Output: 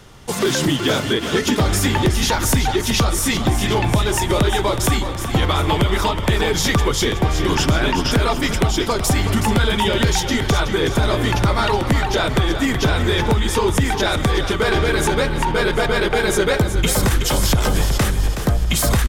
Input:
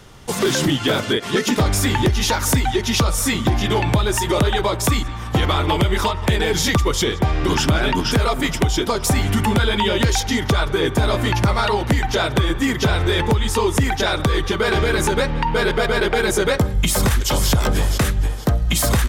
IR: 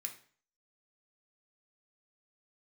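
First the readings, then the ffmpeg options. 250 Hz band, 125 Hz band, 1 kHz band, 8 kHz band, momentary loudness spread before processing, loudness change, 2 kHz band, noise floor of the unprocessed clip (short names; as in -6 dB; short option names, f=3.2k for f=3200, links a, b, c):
+0.5 dB, +0.5 dB, +0.5 dB, +0.5 dB, 2 LU, +0.5 dB, +0.5 dB, -27 dBFS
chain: -filter_complex "[0:a]asplit=7[a][b][c][d][e][f][g];[b]adelay=372,afreqshift=-31,volume=-9dB[h];[c]adelay=744,afreqshift=-62,volume=-14.7dB[i];[d]adelay=1116,afreqshift=-93,volume=-20.4dB[j];[e]adelay=1488,afreqshift=-124,volume=-26dB[k];[f]adelay=1860,afreqshift=-155,volume=-31.7dB[l];[g]adelay=2232,afreqshift=-186,volume=-37.4dB[m];[a][h][i][j][k][l][m]amix=inputs=7:normalize=0"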